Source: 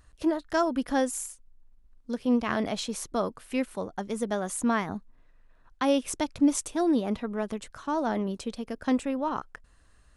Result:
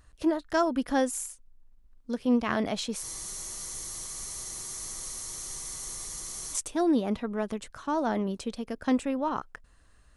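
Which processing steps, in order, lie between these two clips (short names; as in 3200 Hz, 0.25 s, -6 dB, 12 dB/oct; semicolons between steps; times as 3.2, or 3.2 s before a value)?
spectral freeze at 3.05, 3.49 s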